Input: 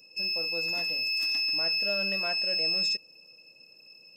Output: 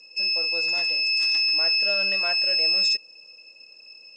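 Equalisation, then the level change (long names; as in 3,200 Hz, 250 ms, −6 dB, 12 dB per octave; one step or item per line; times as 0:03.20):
high-pass filter 760 Hz 6 dB per octave
low-pass filter 8,600 Hz 24 dB per octave
+6.5 dB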